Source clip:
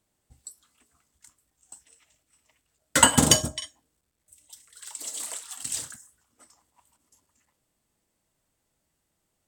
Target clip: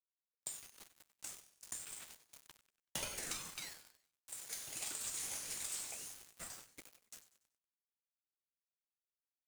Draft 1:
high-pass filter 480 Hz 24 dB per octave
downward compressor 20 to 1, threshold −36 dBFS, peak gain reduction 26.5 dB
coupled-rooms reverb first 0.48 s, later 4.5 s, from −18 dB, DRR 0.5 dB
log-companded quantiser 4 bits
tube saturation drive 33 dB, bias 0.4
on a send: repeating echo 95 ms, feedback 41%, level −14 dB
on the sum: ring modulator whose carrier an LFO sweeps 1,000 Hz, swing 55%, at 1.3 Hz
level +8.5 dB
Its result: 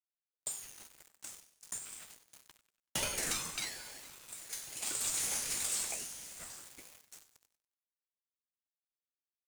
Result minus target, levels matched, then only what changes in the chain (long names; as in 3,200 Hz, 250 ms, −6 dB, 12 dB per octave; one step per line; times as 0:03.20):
downward compressor: peak gain reduction −9.5 dB
change: downward compressor 20 to 1, threshold −46 dBFS, peak gain reduction 36 dB